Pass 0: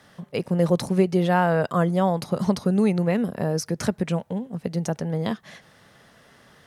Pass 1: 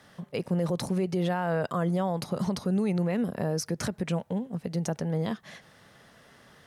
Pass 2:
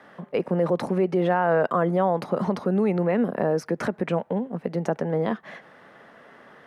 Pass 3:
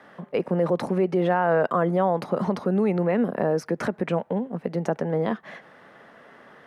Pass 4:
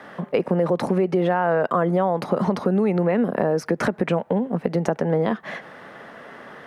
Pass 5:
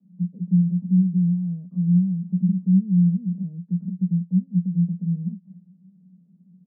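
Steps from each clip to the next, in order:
brickwall limiter −18 dBFS, peak gain reduction 9.5 dB; level −2 dB
three-way crossover with the lows and the highs turned down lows −18 dB, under 210 Hz, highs −19 dB, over 2,400 Hz; level +8.5 dB
no processing that can be heard
downward compressor 3 to 1, threshold −27 dBFS, peak gain reduction 8.5 dB; level +8.5 dB
flat-topped band-pass 180 Hz, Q 7.8; level +8 dB

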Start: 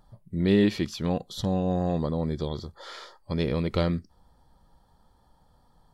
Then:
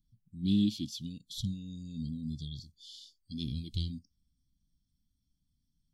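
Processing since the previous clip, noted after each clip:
noise reduction from a noise print of the clip's start 12 dB
Chebyshev band-stop filter 280–3,200 Hz, order 4
level −3 dB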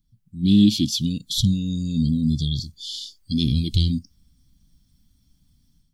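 automatic gain control gain up to 11.5 dB
in parallel at +0.5 dB: brickwall limiter −19.5 dBFS, peak gain reduction 11 dB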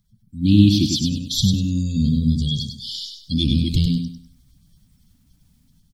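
spectral magnitudes quantised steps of 30 dB
on a send: repeating echo 99 ms, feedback 29%, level −5.5 dB
on the sum: level +2 dB

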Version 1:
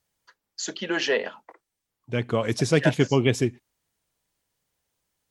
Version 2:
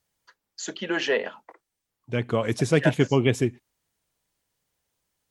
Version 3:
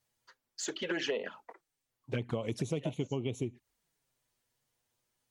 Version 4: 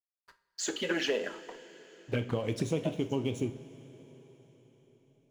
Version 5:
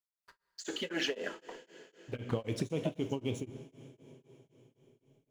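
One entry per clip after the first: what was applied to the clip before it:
dynamic equaliser 5,000 Hz, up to −6 dB, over −46 dBFS, Q 1.6
flanger swept by the level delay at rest 8.3 ms, full sweep at −21 dBFS; downward compressor 12 to 1, threshold −30 dBFS, peak gain reduction 15.5 dB
slack as between gear wheels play −51.5 dBFS; coupled-rooms reverb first 0.37 s, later 4.9 s, from −18 dB, DRR 6.5 dB; level +3 dB
tremolo along a rectified sine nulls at 3.9 Hz

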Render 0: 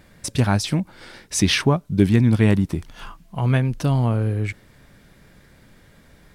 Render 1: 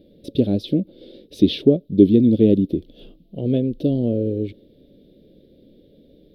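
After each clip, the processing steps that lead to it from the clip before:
drawn EQ curve 130 Hz 0 dB, 290 Hz +15 dB, 550 Hz +13 dB, 1,000 Hz −29 dB, 1,900 Hz −20 dB, 3,600 Hz +6 dB, 7,400 Hz −27 dB, 13,000 Hz −5 dB
level −7 dB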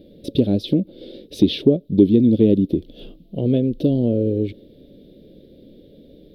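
downward compressor 1.5 to 1, threshold −24 dBFS, peak gain reduction 6.5 dB
level +5 dB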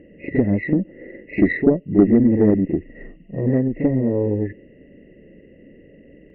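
hearing-aid frequency compression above 1,600 Hz 4 to 1
backwards echo 39 ms −7.5 dB
harmonic generator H 4 −23 dB, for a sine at −0.5 dBFS
level −1 dB

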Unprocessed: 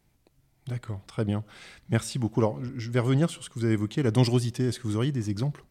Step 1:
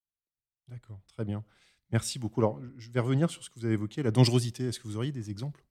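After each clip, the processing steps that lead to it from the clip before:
multiband upward and downward expander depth 100%
level −4.5 dB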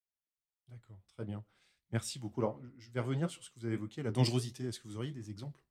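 low-shelf EQ 180 Hz −3 dB
flanger 1.5 Hz, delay 7.9 ms, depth 9.9 ms, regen −52%
level −2.5 dB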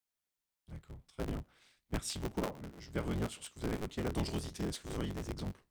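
sub-harmonics by changed cycles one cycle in 3, inverted
downward compressor 10 to 1, threshold −36 dBFS, peak gain reduction 14 dB
level +4.5 dB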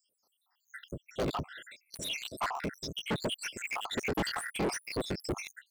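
time-frequency cells dropped at random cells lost 82%
mid-hump overdrive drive 33 dB, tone 3,500 Hz, clips at −22.5 dBFS

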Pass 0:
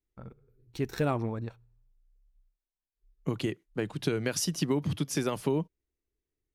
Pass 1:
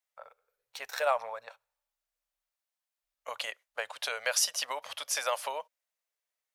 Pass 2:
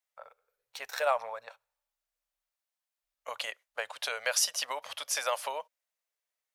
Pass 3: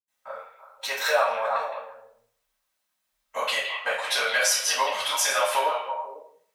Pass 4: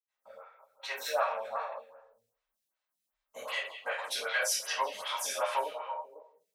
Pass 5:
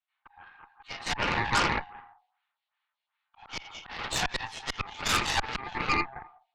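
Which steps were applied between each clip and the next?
elliptic high-pass filter 560 Hz, stop band 40 dB; level +5.5 dB
no processing that can be heard
echo through a band-pass that steps 165 ms, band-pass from 2,600 Hz, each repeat −1.4 octaves, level −6 dB; downward compressor 3 to 1, threshold −33 dBFS, peak gain reduction 8.5 dB; convolution reverb RT60 0.55 s, pre-delay 76 ms; level +5.5 dB
phaser with staggered stages 2.6 Hz; level −6 dB
single-sideband voice off tune +270 Hz 390–3,500 Hz; volume swells 371 ms; harmonic generator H 8 −9 dB, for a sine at −23 dBFS; level +8 dB

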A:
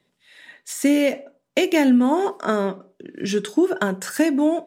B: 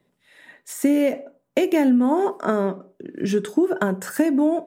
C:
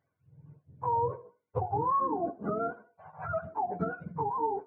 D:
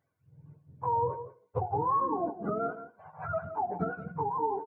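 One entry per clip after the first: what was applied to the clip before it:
parametric band 4,300 Hz −10 dB 2.4 octaves; downward compressor 2.5 to 1, threshold −19 dBFS, peak gain reduction 5 dB; level +3 dB
frequency axis turned over on the octave scale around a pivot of 520 Hz; level −9 dB
single-tap delay 170 ms −13 dB

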